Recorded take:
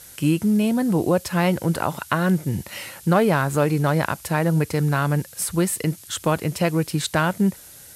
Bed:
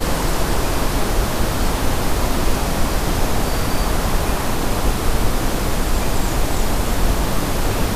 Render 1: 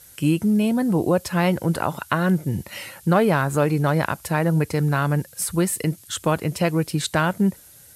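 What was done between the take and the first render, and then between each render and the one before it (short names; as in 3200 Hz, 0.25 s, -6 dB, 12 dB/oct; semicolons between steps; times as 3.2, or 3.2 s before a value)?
denoiser 6 dB, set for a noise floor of -44 dBFS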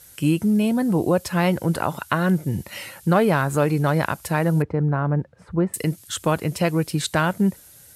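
4.62–5.74 LPF 1100 Hz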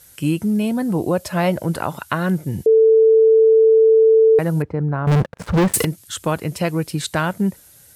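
1.19–1.63 bell 620 Hz +14.5 dB 0.21 oct; 2.66–4.39 bleep 444 Hz -8.5 dBFS; 5.07–5.85 sample leveller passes 5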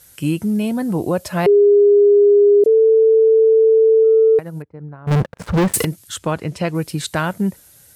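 1.46–2.64 bleep 408 Hz -7.5 dBFS; 4.04–5.11 upward expander 2.5:1, over -26 dBFS; 6.18–6.75 air absorption 56 m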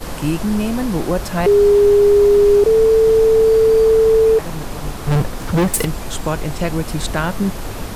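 add bed -8 dB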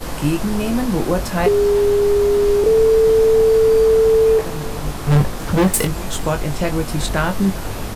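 doubler 21 ms -7 dB; echo 0.388 s -20.5 dB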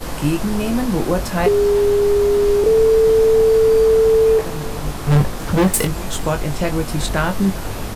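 nothing audible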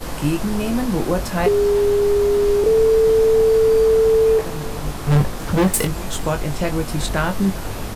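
gain -1.5 dB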